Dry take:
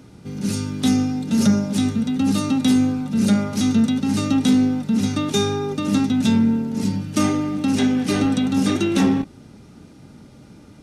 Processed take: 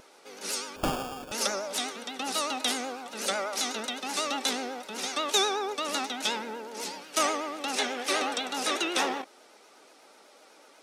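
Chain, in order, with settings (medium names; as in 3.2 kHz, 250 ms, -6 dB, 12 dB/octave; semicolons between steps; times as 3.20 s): high-pass 500 Hz 24 dB/octave; vibrato 8.1 Hz 96 cents; 0.76–1.32 s: sample-rate reducer 2 kHz, jitter 0%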